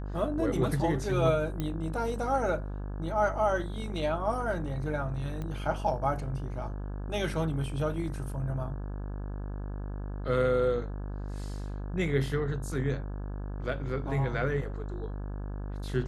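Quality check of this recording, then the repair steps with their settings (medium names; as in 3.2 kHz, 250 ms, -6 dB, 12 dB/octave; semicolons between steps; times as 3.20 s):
buzz 50 Hz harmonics 34 -36 dBFS
1.60 s: pop -19 dBFS
5.42 s: pop -25 dBFS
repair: de-click; de-hum 50 Hz, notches 34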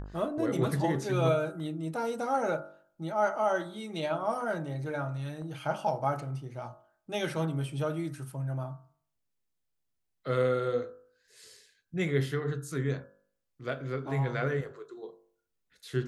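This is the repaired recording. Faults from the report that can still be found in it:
nothing left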